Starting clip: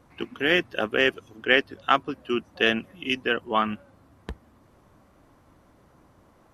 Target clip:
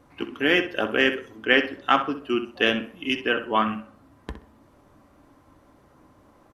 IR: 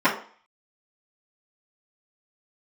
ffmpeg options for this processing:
-filter_complex "[0:a]asplit=2[link_01][link_02];[link_02]adelay=64,lowpass=frequency=4300:poles=1,volume=-10.5dB,asplit=2[link_03][link_04];[link_04]adelay=64,lowpass=frequency=4300:poles=1,volume=0.25,asplit=2[link_05][link_06];[link_06]adelay=64,lowpass=frequency=4300:poles=1,volume=0.25[link_07];[link_01][link_03][link_05][link_07]amix=inputs=4:normalize=0,asplit=2[link_08][link_09];[1:a]atrim=start_sample=2205[link_10];[link_09][link_10]afir=irnorm=-1:irlink=0,volume=-26.5dB[link_11];[link_08][link_11]amix=inputs=2:normalize=0"

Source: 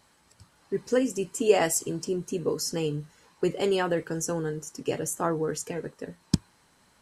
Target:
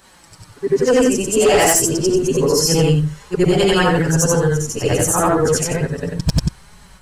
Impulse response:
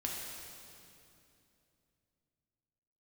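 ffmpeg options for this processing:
-af "afftfilt=real='re':imag='-im':win_size=8192:overlap=0.75,asoftclip=type=tanh:threshold=-17.5dB,asubboost=boost=9:cutoff=89,flanger=delay=4.7:depth=5.3:regen=-11:speed=0.29:shape=triangular,apsyclip=31dB,volume=-8dB"

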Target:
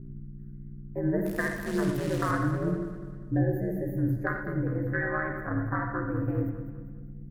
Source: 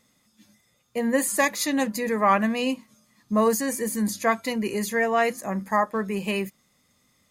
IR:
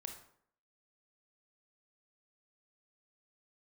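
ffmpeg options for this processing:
-filter_complex "[0:a]asettb=1/sr,asplit=3[link_01][link_02][link_03];[link_01]atrim=end=4.554[link_04];[link_02]atrim=start=4.55:end=5.11,asetpts=PTS-STARTPTS,afade=type=in:duration=0.004:curve=qsin,afade=type=out:start_time=0.556:duration=0.004:curve=qsin,acrossover=split=3100[link_05][link_06];[link_06]acompressor=threshold=-44dB:ratio=4:attack=1:release=60[link_07];[link_05][link_07]amix=inputs=2:normalize=0[link_08];[link_03]atrim=start=5.106[link_09];[link_04][link_08]acrossfade=duration=0.004:curve1=hsin:curve2=qsin[link_10];[link_10][link_09]acrossfade=duration=0.004:curve1=qsin:curve2=hsin,afwtdn=0.0447,firequalizer=gain_entry='entry(200,0);entry(330,-4);entry(530,-3);entry(830,-10);entry(1500,14);entry(2700,-25);entry(4800,-21);entry(9300,-26);entry(14000,12)':delay=0.05:min_phase=1,acrossover=split=380[link_11][link_12];[link_12]acompressor=threshold=-28dB:ratio=5[link_13];[link_11][link_13]amix=inputs=2:normalize=0,aeval=exprs='val(0)+0.0126*(sin(2*PI*60*n/s)+sin(2*PI*2*60*n/s)/2+sin(2*PI*3*60*n/s)/3+sin(2*PI*4*60*n/s)/4+sin(2*PI*5*60*n/s)/5)':channel_layout=same,asettb=1/sr,asplit=3[link_14][link_15][link_16];[link_14]atrim=end=1.254[link_17];[link_15]atrim=start=1.25:end=2.31,asetpts=PTS-STARTPTS,afade=type=in:duration=0.004:curve=qsin,afade=type=out:start_time=1.056:duration=0.004:curve=qsin,acrusher=bits=7:dc=4:mix=0:aa=0.000001[link_18];[link_16]atrim=start=2.306[link_19];[link_17][link_18]acrossfade=duration=0.004:curve1=hsin:curve2=qsin[link_20];[link_20][link_19]acrossfade=duration=0.004:curve1=qsin:curve2=hsin,aeval=exprs='val(0)*sin(2*PI*82*n/s)':channel_layout=same,asplit=3[link_21][link_22][link_23];[link_21]afade=type=out:start_time=3.33:duration=0.02[link_24];[link_22]asuperstop=centerf=1200:order=8:qfactor=1.2,afade=type=in:start_time=3.33:duration=0.02,afade=type=out:start_time=3.97:duration=0.02[link_25];[link_23]afade=type=in:start_time=3.97:duration=0.02[link_26];[link_24][link_25][link_26]amix=inputs=3:normalize=0,aecho=1:1:200|400|600|800|1000:0.282|0.127|0.0571|0.0257|0.0116[link_27];[1:a]atrim=start_sample=2205,atrim=end_sample=3087,asetrate=22932,aresample=44100[link_28];[link_27][link_28]afir=irnorm=-1:irlink=0,volume=2dB"

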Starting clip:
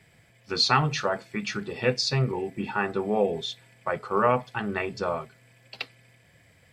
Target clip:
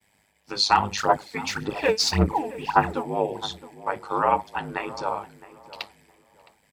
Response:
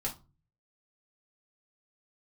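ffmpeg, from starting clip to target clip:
-filter_complex "[0:a]highpass=150,aemphasis=mode=production:type=cd,agate=range=-33dB:threshold=-54dB:ratio=3:detection=peak,equalizer=frequency=890:width=4.9:gain=13.5,aeval=exprs='val(0)*sin(2*PI*51*n/s)':channel_layout=same,asoftclip=type=hard:threshold=-6dB,asplit=3[link_01][link_02][link_03];[link_01]afade=type=out:start_time=0.97:duration=0.02[link_04];[link_02]aphaser=in_gain=1:out_gain=1:delay=4.6:decay=0.75:speed=1.8:type=sinusoidal,afade=type=in:start_time=0.97:duration=0.02,afade=type=out:start_time=3.02:duration=0.02[link_05];[link_03]afade=type=in:start_time=3.02:duration=0.02[link_06];[link_04][link_05][link_06]amix=inputs=3:normalize=0,asplit=2[link_07][link_08];[link_08]adelay=664,lowpass=frequency=1200:poles=1,volume=-15.5dB,asplit=2[link_09][link_10];[link_10]adelay=664,lowpass=frequency=1200:poles=1,volume=0.28,asplit=2[link_11][link_12];[link_12]adelay=664,lowpass=frequency=1200:poles=1,volume=0.28[link_13];[link_07][link_09][link_11][link_13]amix=inputs=4:normalize=0"

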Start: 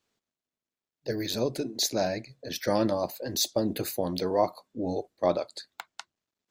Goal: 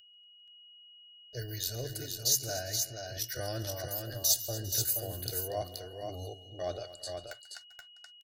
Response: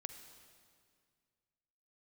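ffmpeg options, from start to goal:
-filter_complex "[0:a]agate=range=-45dB:threshold=-45dB:ratio=16:detection=peak,atempo=0.79,aecho=1:1:2.7:0.4,aeval=exprs='val(0)+0.00631*sin(2*PI*2900*n/s)':channel_layout=same,firequalizer=gain_entry='entry(130,0);entry(190,-20);entry(280,-20);entry(610,-9);entry(990,-24);entry(1500,-3);entry(2300,-15);entry(5500,1);entry(13000,6)':delay=0.05:min_phase=1,asplit=2[link_01][link_02];[link_02]aecho=0:1:139|237|399|477:0.112|0.15|0.106|0.562[link_03];[link_01][link_03]amix=inputs=2:normalize=0"

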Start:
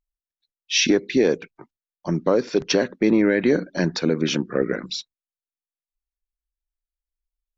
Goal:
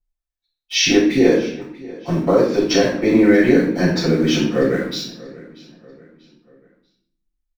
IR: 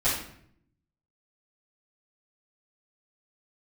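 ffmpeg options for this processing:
-filter_complex "[0:a]asplit=2[link_01][link_02];[link_02]aeval=exprs='val(0)*gte(abs(val(0)),0.0335)':channel_layout=same,volume=-6dB[link_03];[link_01][link_03]amix=inputs=2:normalize=0,asplit=2[link_04][link_05];[link_05]adelay=638,lowpass=frequency=4900:poles=1,volume=-20dB,asplit=2[link_06][link_07];[link_07]adelay=638,lowpass=frequency=4900:poles=1,volume=0.45,asplit=2[link_08][link_09];[link_09]adelay=638,lowpass=frequency=4900:poles=1,volume=0.45[link_10];[link_04][link_06][link_08][link_10]amix=inputs=4:normalize=0[link_11];[1:a]atrim=start_sample=2205[link_12];[link_11][link_12]afir=irnorm=-1:irlink=0,volume=-10.5dB"

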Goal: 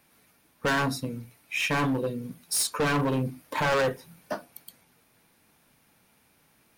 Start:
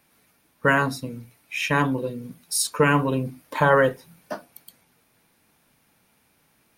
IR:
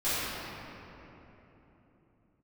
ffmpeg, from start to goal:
-af "asoftclip=type=hard:threshold=-22dB"

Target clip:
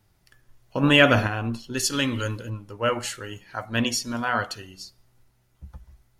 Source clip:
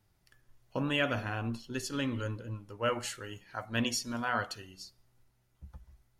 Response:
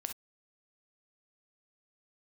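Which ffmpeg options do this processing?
-filter_complex "[0:a]asplit=3[link_01][link_02][link_03];[link_01]afade=type=out:start_time=0.82:duration=0.02[link_04];[link_02]acontrast=87,afade=type=in:start_time=0.82:duration=0.02,afade=type=out:start_time=1.26:duration=0.02[link_05];[link_03]afade=type=in:start_time=1.26:duration=0.02[link_06];[link_04][link_05][link_06]amix=inputs=3:normalize=0,asettb=1/sr,asplit=3[link_07][link_08][link_09];[link_07]atrim=end=1.774[link_10];[link_08]atrim=start=1.77:end=2.5,asetpts=PTS-STARTPTS,afade=type=in:duration=0.004:curve=qsin,afade=type=out:start_time=0.726:duration=0.004:curve=qsin,highshelf=frequency=2100:gain=9.5[link_11];[link_09]atrim=start=2.496[link_12];[link_10][link_11]acrossfade=duration=0.004:curve1=hsin:curve2=qsin[link_13];[link_13][link_12]acrossfade=duration=0.004:curve1=qsin:curve2=hsin,volume=7dB"

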